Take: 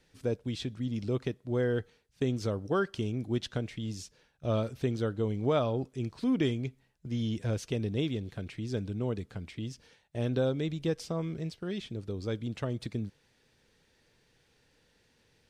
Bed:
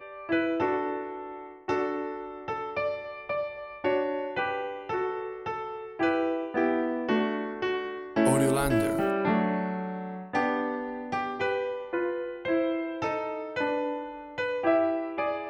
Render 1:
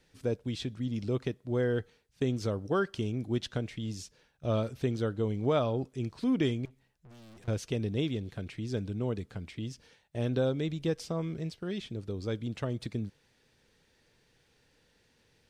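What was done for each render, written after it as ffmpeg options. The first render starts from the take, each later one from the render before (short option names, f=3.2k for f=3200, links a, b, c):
-filter_complex "[0:a]asettb=1/sr,asplit=3[a][b][c];[a]atrim=end=6.654[d];[b]atrim=start=6.65:end=7.48,asetpts=PTS-STARTPTS,afade=t=in:d=0.004:c=qsin,afade=t=out:st=0.826:d=0.004:c=qsin,aeval=exprs='(tanh(398*val(0)+0.35)-tanh(0.35))/398':c=same[e];[c]atrim=start=7.476[f];[d][e]acrossfade=d=0.004:c1=hsin:c2=qsin[g];[g][f]acrossfade=d=0.004:c1=qsin:c2=hsin"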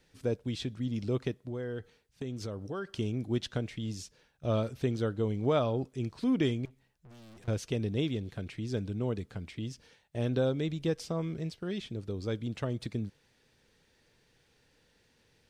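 -filter_complex "[0:a]asettb=1/sr,asplit=3[a][b][c];[a]atrim=end=1.484[d];[b]atrim=start=1.48:end=2.92,asetpts=PTS-STARTPTS,afade=t=in:d=0.004:c=qsin,afade=t=out:st=1.436:d=0.004:c=qsin,acompressor=threshold=-37dB:ratio=2.5:attack=3.2:release=140:knee=1:detection=peak[e];[c]atrim=start=2.916[f];[d][e]acrossfade=d=0.004:c1=hsin:c2=qsin[g];[g][f]acrossfade=d=0.004:c1=qsin:c2=hsin"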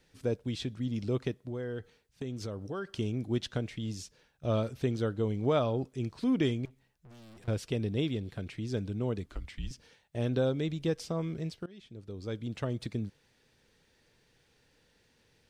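-filter_complex "[0:a]asettb=1/sr,asplit=3[a][b][c];[a]atrim=end=7.244[d];[b]atrim=start=7.24:end=8.37,asetpts=PTS-STARTPTS,afade=t=in:d=0.004:c=qsin,afade=t=out:st=1.126:d=0.004:c=qsin,bandreject=f=6.3k:w=8.9[e];[c]atrim=start=8.366[f];[d][e]acrossfade=d=0.004:c1=hsin:c2=qsin[g];[g][f]acrossfade=d=0.004:c1=qsin:c2=hsin,asettb=1/sr,asplit=3[h][i][j];[h]atrim=end=9.264[k];[i]atrim=start=9.26:end=9.71,asetpts=PTS-STARTPTS,afade=t=in:d=0.004:c=qsin,afade=t=out:st=0.446:d=0.004:c=qsin,afreqshift=-150[l];[j]atrim=start=9.706[m];[k][l]acrossfade=d=0.004:c1=hsin:c2=qsin[n];[n][m]acrossfade=d=0.004:c1=qsin:c2=hsin,asplit=2[o][p];[o]atrim=end=11.66,asetpts=PTS-STARTPTS,afade=t=out:st=11.656:d=0.004:c=hsin:silence=0.0794328[q];[p]atrim=start=11.66,asetpts=PTS-STARTPTS,afade=t=in:d=0.98:silence=0.0794328[r];[q][r]concat=n=2:v=0:a=1"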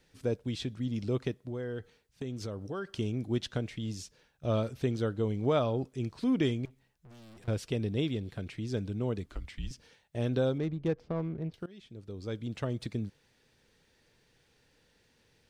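-filter_complex "[0:a]asettb=1/sr,asplit=3[a][b][c];[a]atrim=end=10.584[d];[b]atrim=start=10.58:end=11.54,asetpts=PTS-STARTPTS,afade=t=in:d=0.004:c=qsin,afade=t=out:st=0.956:d=0.004:c=qsin,adynamicsmooth=sensitivity=4:basefreq=970[e];[c]atrim=start=11.536[f];[d][e]acrossfade=d=0.004:c1=hsin:c2=qsin[g];[g][f]acrossfade=d=0.004:c1=qsin:c2=hsin"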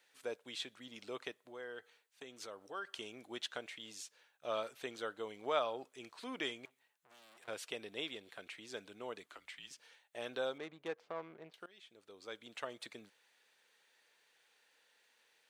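-af "highpass=800,equalizer=f=5.2k:t=o:w=0.48:g=-6"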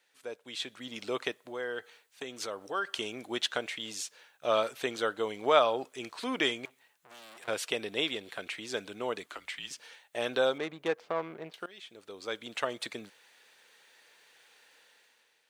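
-af "dynaudnorm=f=120:g=11:m=11dB"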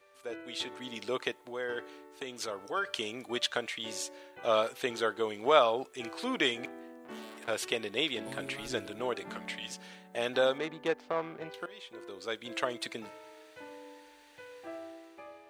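-filter_complex "[1:a]volume=-20dB[a];[0:a][a]amix=inputs=2:normalize=0"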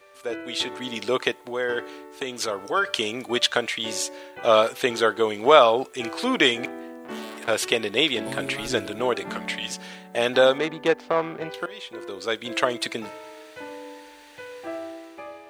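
-af "volume=10dB,alimiter=limit=-1dB:level=0:latency=1"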